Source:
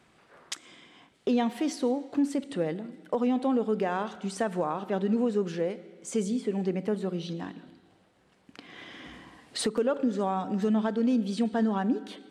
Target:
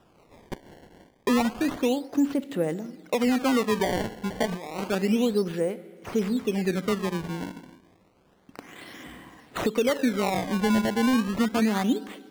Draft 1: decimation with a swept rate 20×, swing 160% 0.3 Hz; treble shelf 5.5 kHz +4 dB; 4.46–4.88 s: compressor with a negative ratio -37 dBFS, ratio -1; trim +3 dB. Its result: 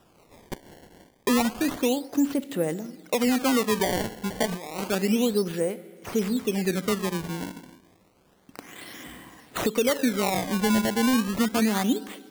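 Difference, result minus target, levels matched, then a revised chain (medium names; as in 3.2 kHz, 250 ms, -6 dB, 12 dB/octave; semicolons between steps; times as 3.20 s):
8 kHz band +6.0 dB
decimation with a swept rate 20×, swing 160% 0.3 Hz; treble shelf 5.5 kHz -6 dB; 4.46–4.88 s: compressor with a negative ratio -37 dBFS, ratio -1; trim +3 dB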